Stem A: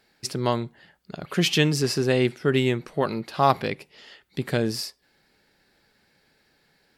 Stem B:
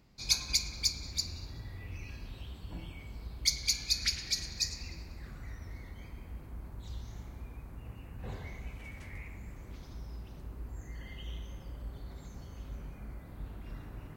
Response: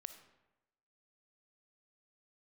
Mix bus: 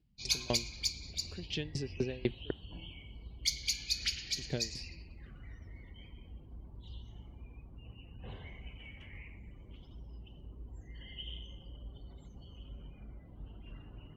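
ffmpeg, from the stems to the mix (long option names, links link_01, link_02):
-filter_complex "[0:a]acrossover=split=5100[link_01][link_02];[link_02]acompressor=threshold=-48dB:ratio=4:attack=1:release=60[link_03];[link_01][link_03]amix=inputs=2:normalize=0,equalizer=frequency=1200:width_type=o:width=0.96:gain=-12.5,aeval=exprs='val(0)*pow(10,-31*if(lt(mod(4*n/s,1),2*abs(4)/1000),1-mod(4*n/s,1)/(2*abs(4)/1000),(mod(4*n/s,1)-2*abs(4)/1000)/(1-2*abs(4)/1000))/20)':channel_layout=same,volume=-4.5dB,asplit=3[link_04][link_05][link_06];[link_04]atrim=end=2.51,asetpts=PTS-STARTPTS,afade=type=out:start_time=2.506:duration=0.004:curve=hsin[link_07];[link_05]atrim=start=2.51:end=3.97,asetpts=PTS-STARTPTS,volume=0[link_08];[link_06]atrim=start=3.97,asetpts=PTS-STARTPTS,afade=type=in:duration=0.004:curve=hsin[link_09];[link_07][link_08][link_09]concat=n=3:v=0:a=1[link_10];[1:a]equalizer=frequency=3000:width_type=o:width=0.33:gain=14.5,volume=-5dB[link_11];[link_10][link_11]amix=inputs=2:normalize=0,afftdn=noise_reduction=20:noise_floor=-59"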